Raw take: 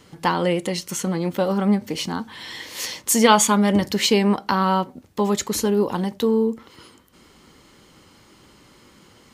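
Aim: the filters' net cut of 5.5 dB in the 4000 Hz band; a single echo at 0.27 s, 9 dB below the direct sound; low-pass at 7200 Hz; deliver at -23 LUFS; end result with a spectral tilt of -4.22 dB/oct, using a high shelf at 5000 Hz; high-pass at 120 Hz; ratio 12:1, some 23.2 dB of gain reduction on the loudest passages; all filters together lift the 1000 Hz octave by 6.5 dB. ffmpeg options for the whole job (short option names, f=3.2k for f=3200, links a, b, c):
-af "highpass=120,lowpass=7.2k,equalizer=f=1k:t=o:g=8,equalizer=f=4k:t=o:g=-6,highshelf=f=5k:g=-4,acompressor=threshold=-28dB:ratio=12,aecho=1:1:270:0.355,volume=9.5dB"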